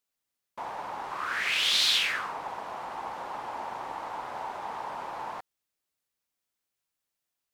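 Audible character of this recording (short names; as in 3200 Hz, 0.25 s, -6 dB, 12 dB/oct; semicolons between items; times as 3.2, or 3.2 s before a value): noise floor -86 dBFS; spectral tilt +0.5 dB/oct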